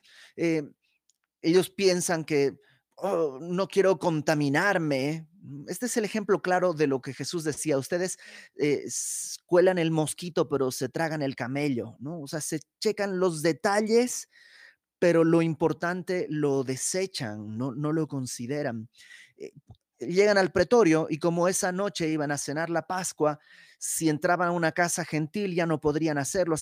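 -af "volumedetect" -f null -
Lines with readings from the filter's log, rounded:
mean_volume: -27.1 dB
max_volume: -8.5 dB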